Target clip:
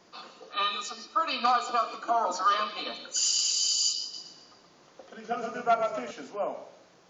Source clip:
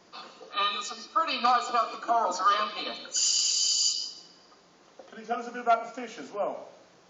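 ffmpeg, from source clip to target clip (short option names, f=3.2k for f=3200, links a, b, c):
-filter_complex "[0:a]asettb=1/sr,asplit=3[a][b][c];[a]atrim=end=4.014[d];[b]atrim=start=4.01:end=6.11,asetpts=PTS-STARTPTS,afade=t=in:d=0.004:c=qsin,afade=t=out:st=2.096:d=0.004:c=qsin,asplit=6[e][f][g][h][i][j];[f]adelay=123,afreqshift=-32,volume=-5dB[k];[g]adelay=246,afreqshift=-64,volume=-13dB[l];[h]adelay=369,afreqshift=-96,volume=-20.9dB[m];[i]adelay=492,afreqshift=-128,volume=-28.9dB[n];[j]adelay=615,afreqshift=-160,volume=-36.8dB[o];[e][k][l][m][n][o]amix=inputs=6:normalize=0,atrim=end_sample=92610[p];[c]atrim=start=6.106[q];[d][p]acrossfade=d=0.004:c1=hsin:c2=qsin[r];[r][q]acrossfade=d=0.004:c1=qsin:c2=hsin,volume=-1dB"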